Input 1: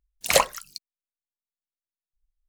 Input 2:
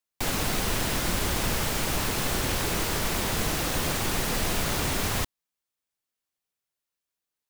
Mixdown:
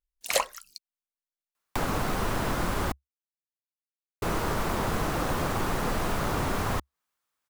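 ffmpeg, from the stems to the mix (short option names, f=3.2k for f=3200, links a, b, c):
-filter_complex "[0:a]equalizer=f=110:t=o:w=1.5:g=-15,volume=-9dB[a];[1:a]acrossover=split=780|2800[b][c][d];[b]acompressor=threshold=-28dB:ratio=4[e];[c]acompressor=threshold=-47dB:ratio=4[f];[d]acompressor=threshold=-45dB:ratio=4[g];[e][f][g]amix=inputs=3:normalize=0,equalizer=f=1.2k:w=1.1:g=10,adelay=1550,volume=-0.5dB,asplit=3[h][i][j];[h]atrim=end=2.92,asetpts=PTS-STARTPTS,afade=t=out:st=2.916:d=0.004:c=hsin[k];[i]atrim=start=2.92:end=4.22,asetpts=PTS-STARTPTS,volume=0[l];[j]atrim=start=4.22,asetpts=PTS-STARTPTS,afade=t=in:d=0.004:c=hsin[m];[k][l][m]concat=n=3:v=0:a=1[n];[a][n]amix=inputs=2:normalize=0,equalizer=f=69:t=o:w=0.25:g=-3.5,dynaudnorm=f=150:g=3:m=3dB"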